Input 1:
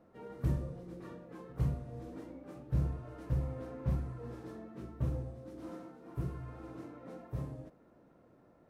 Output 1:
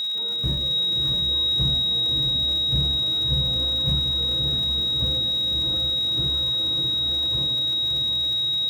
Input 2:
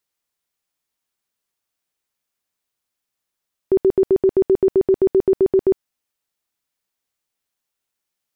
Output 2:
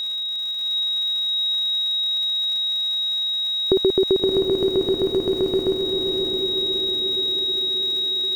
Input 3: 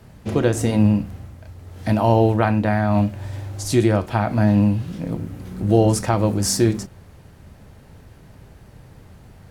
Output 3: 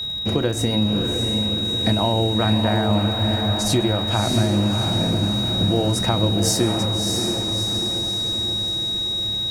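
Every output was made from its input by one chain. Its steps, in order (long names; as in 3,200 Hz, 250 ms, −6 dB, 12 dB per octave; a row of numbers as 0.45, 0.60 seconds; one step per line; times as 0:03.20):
steady tone 3,800 Hz −28 dBFS
downward compressor, threshold −20 dBFS
surface crackle 260 per second −38 dBFS
feedback delay with all-pass diffusion 649 ms, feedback 58%, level −4 dB
loudness normalisation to −20 LKFS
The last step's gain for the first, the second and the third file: +4.5, +4.5, +3.0 decibels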